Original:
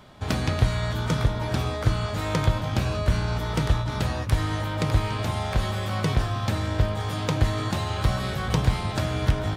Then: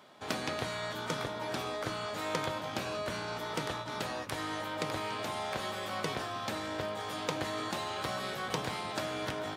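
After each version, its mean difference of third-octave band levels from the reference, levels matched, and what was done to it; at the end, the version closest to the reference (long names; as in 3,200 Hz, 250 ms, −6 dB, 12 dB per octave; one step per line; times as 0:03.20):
5.5 dB: high-pass filter 300 Hz 12 dB per octave
level −5 dB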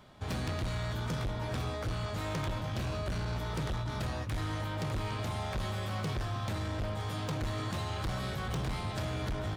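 2.0 dB: hard clipping −23.5 dBFS, distortion −7 dB
level −7 dB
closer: second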